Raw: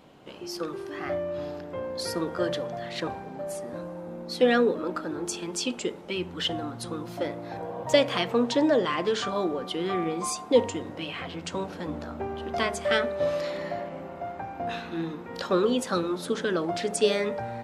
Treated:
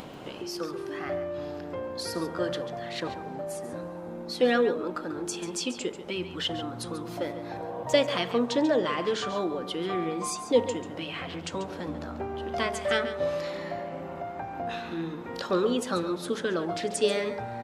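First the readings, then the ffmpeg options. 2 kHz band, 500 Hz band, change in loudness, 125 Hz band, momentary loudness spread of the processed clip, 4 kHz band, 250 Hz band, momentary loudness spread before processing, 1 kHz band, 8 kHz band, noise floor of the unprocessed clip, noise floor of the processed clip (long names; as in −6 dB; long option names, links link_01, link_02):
−1.5 dB, −1.5 dB, −1.5 dB, −1.5 dB, 11 LU, −1.5 dB, −1.5 dB, 12 LU, −1.0 dB, −1.5 dB, −41 dBFS, −40 dBFS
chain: -af "acompressor=mode=upward:threshold=-29dB:ratio=2.5,aecho=1:1:140:0.251,volume=-2dB"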